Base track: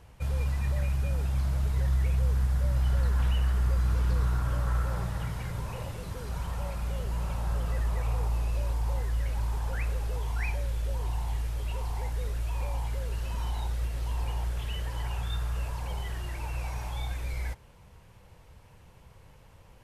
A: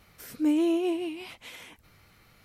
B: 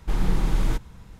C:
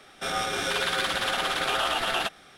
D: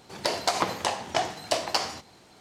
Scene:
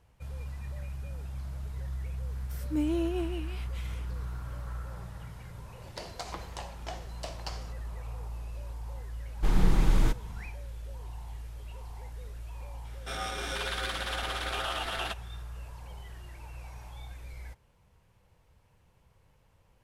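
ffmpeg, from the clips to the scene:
ffmpeg -i bed.wav -i cue0.wav -i cue1.wav -i cue2.wav -i cue3.wav -filter_complex "[0:a]volume=-10.5dB[link_01];[1:a]atrim=end=2.44,asetpts=PTS-STARTPTS,volume=-5.5dB,afade=type=in:duration=0.004:curve=hsin,afade=type=out:start_time=2.436:duration=0.004:curve=hsin,adelay=2310[link_02];[4:a]atrim=end=2.4,asetpts=PTS-STARTPTS,volume=-15dB,afade=type=in:duration=0.004:curve=hsin,afade=type=out:start_time=2.396:duration=0.004:curve=hsin,adelay=5720[link_03];[2:a]atrim=end=1.19,asetpts=PTS-STARTPTS,volume=-1dB,afade=type=in:duration=0.1,afade=type=out:start_time=1.09:duration=0.1,adelay=9350[link_04];[3:a]atrim=end=2.57,asetpts=PTS-STARTPTS,volume=-7.5dB,afade=type=in:duration=0.004:curve=hsin,afade=type=out:start_time=2.566:duration=0.004:curve=hsin,adelay=12850[link_05];[link_01][link_02][link_03][link_04][link_05]amix=inputs=5:normalize=0" out.wav

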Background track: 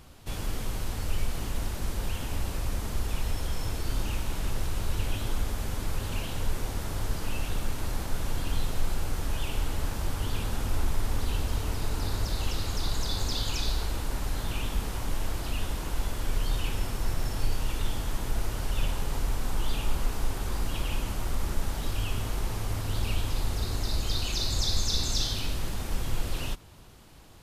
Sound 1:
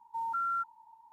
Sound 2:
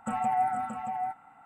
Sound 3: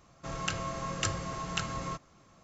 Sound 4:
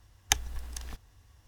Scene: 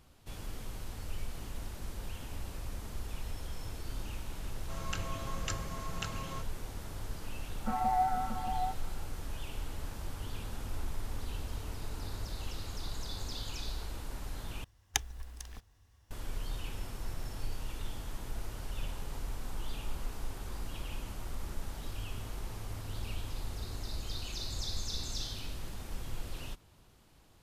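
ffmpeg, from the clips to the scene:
ffmpeg -i bed.wav -i cue0.wav -i cue1.wav -i cue2.wav -i cue3.wav -filter_complex "[0:a]volume=-10dB[link_01];[2:a]lowpass=1800[link_02];[link_01]asplit=2[link_03][link_04];[link_03]atrim=end=14.644[link_05];[4:a]atrim=end=1.47,asetpts=PTS-STARTPTS,volume=-6dB[link_06];[link_04]atrim=start=16.106[link_07];[3:a]atrim=end=2.43,asetpts=PTS-STARTPTS,volume=-6.5dB,afade=type=in:duration=0.004:curve=hsin,afade=type=out:start_time=2.426:duration=0.004:curve=hsin,adelay=196245S[link_08];[link_02]atrim=end=1.45,asetpts=PTS-STARTPTS,volume=-2.5dB,afade=type=in:duration=0.004:curve=hsin,afade=type=out:start_time=1.446:duration=0.004:curve=hsin,adelay=7600[link_09];[link_05][link_06]acrossfade=duration=0.004:curve1=hsin:curve2=hsin[link_10];[link_10][link_07]acrossfade=duration=0.004:curve1=hsin:curve2=hsin[link_11];[link_11][link_08][link_09]amix=inputs=3:normalize=0" out.wav

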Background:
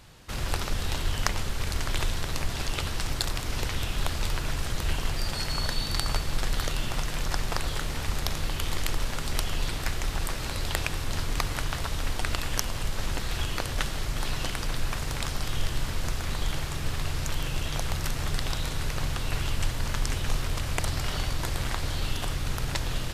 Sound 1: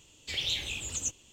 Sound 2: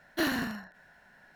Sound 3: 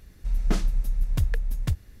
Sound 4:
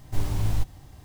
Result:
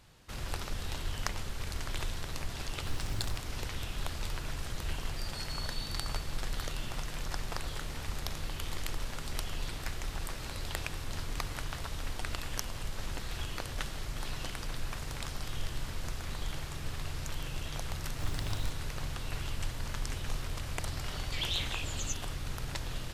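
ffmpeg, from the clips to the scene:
ffmpeg -i bed.wav -i cue0.wav -i cue1.wav -i cue2.wav -i cue3.wav -filter_complex "[4:a]asplit=2[link_01][link_02];[0:a]volume=-8dB[link_03];[1:a]adynamicsmooth=sensitivity=0.5:basefreq=7200[link_04];[link_01]atrim=end=1.04,asetpts=PTS-STARTPTS,volume=-13dB,afade=type=in:duration=0.004:curve=hsin,afade=type=out:start_time=1.036:duration=0.004:curve=hsin,adelay=2730[link_05];[link_02]atrim=end=1.04,asetpts=PTS-STARTPTS,volume=-11.5dB,afade=type=in:duration=0.004:curve=hsin,afade=type=out:start_time=1.036:duration=0.004:curve=hsin,adelay=18070[link_06];[link_04]atrim=end=1.32,asetpts=PTS-STARTPTS,volume=-2dB,afade=type=in:duration=0.004:curve=hsin,afade=type=out:start_time=1.316:duration=0.004:curve=hsin,adelay=21040[link_07];[link_03][link_05][link_06][link_07]amix=inputs=4:normalize=0" out.wav

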